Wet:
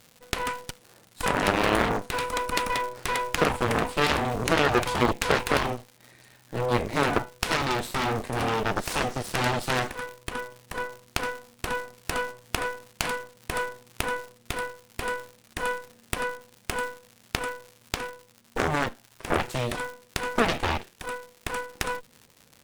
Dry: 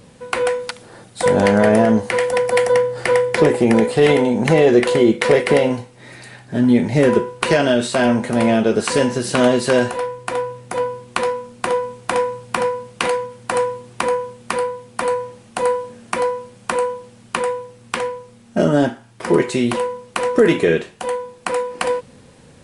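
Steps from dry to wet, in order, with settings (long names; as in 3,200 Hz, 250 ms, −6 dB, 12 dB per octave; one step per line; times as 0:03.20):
surface crackle 510 per second −28 dBFS
harmonic generator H 3 −8 dB, 8 −19 dB, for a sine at −1.5 dBFS
level −3 dB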